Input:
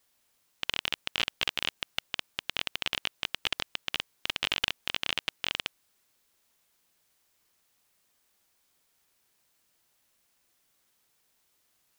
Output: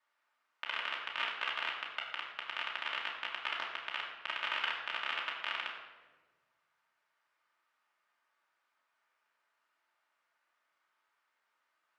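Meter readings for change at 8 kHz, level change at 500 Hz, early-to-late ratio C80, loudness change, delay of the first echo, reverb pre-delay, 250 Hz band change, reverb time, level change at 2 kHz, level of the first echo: under -15 dB, -5.5 dB, 6.0 dB, -5.0 dB, no echo, 3 ms, -13.5 dB, 1.3 s, -1.5 dB, no echo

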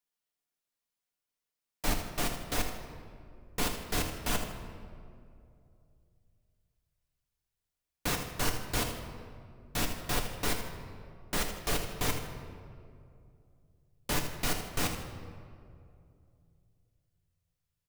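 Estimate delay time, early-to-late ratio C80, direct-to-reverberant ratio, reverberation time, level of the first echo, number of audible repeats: 79 ms, 8.0 dB, 2.0 dB, 2.5 s, -10.0 dB, 2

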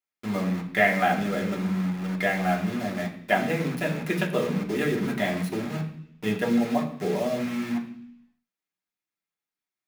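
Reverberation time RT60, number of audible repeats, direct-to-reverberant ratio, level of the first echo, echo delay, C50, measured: 0.70 s, no echo, -2.5 dB, no echo, no echo, 9.5 dB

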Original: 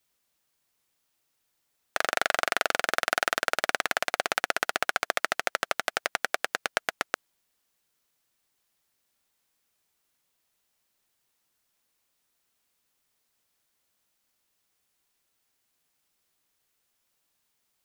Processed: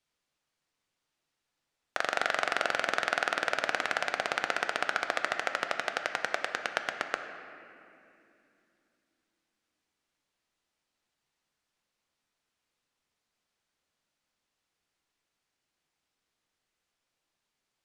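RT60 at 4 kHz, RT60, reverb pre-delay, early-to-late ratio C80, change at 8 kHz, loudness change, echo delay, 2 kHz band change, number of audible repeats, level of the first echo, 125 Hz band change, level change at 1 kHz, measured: 1.9 s, 2.8 s, 4 ms, 8.0 dB, -8.5 dB, -3.0 dB, no echo, -2.5 dB, no echo, no echo, -1.5 dB, -2.5 dB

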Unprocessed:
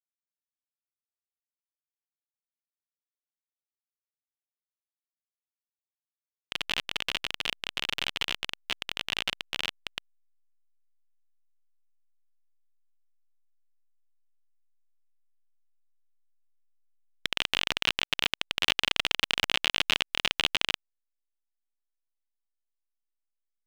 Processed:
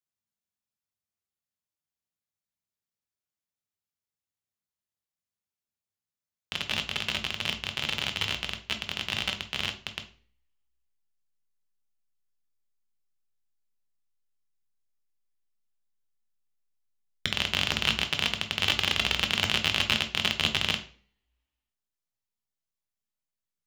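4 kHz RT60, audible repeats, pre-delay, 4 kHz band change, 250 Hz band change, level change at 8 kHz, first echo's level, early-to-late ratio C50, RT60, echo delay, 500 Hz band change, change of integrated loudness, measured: 0.40 s, no echo, 3 ms, +1.0 dB, +6.5 dB, +2.0 dB, no echo, 12.5 dB, 0.45 s, no echo, +2.0 dB, +1.5 dB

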